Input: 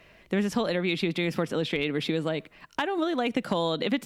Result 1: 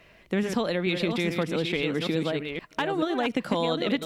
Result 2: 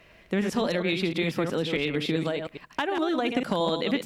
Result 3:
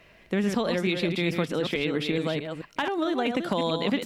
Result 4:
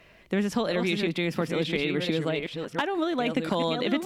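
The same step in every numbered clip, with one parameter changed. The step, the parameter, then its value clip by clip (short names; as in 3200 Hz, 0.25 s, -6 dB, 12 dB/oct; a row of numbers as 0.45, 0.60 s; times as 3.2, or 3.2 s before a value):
reverse delay, time: 0.432, 0.103, 0.218, 0.699 s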